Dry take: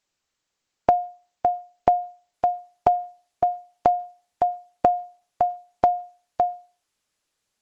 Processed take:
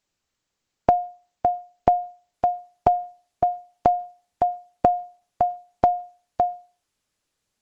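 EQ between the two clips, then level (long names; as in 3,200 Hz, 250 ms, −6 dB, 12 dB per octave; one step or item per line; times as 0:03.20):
low-shelf EQ 320 Hz +7 dB
−1.0 dB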